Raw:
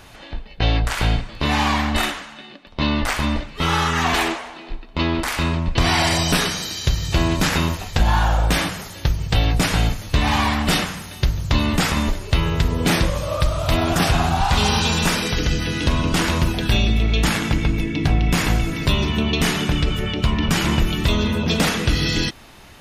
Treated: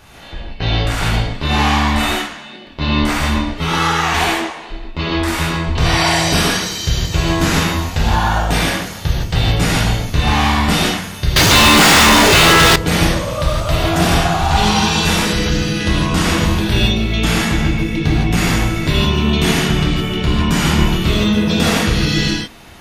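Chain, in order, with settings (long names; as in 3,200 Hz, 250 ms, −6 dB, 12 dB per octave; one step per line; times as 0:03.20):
reverb whose tail is shaped and stops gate 190 ms flat, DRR −6 dB
0:11.36–0:12.76: mid-hump overdrive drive 41 dB, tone 6,700 Hz, clips at 0 dBFS
level −2.5 dB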